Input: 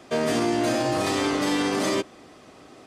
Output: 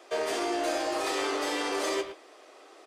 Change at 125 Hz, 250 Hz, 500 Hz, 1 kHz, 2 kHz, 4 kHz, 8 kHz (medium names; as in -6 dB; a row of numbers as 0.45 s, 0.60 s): under -25 dB, -11.5 dB, -4.5 dB, -3.5 dB, -4.0 dB, -4.0 dB, -4.0 dB